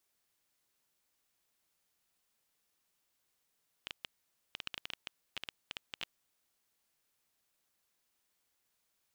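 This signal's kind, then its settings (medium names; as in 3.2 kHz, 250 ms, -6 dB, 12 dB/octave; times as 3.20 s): random clicks 9.9 per s -22 dBFS 2.36 s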